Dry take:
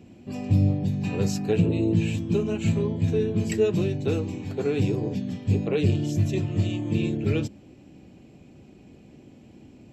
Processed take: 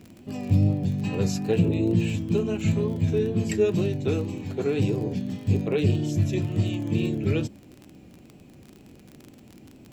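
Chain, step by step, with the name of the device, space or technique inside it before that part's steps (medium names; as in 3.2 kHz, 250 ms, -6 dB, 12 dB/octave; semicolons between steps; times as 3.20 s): vinyl LP (wow and flutter; crackle 37 per s -34 dBFS; pink noise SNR 43 dB)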